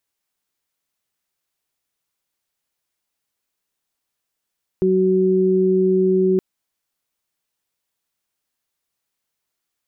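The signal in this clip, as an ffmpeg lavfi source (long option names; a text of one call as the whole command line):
ffmpeg -f lavfi -i "aevalsrc='0.112*sin(2*PI*187*t)+0.188*sin(2*PI*374*t)':duration=1.57:sample_rate=44100" out.wav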